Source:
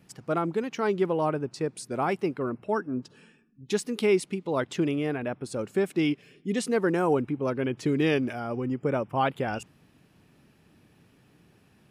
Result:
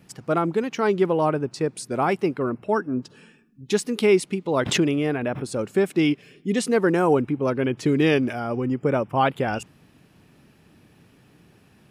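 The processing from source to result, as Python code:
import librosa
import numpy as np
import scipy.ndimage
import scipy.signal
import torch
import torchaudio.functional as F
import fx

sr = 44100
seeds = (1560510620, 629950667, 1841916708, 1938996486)

y = fx.pre_swell(x, sr, db_per_s=81.0, at=(4.54, 5.54))
y = F.gain(torch.from_numpy(y), 5.0).numpy()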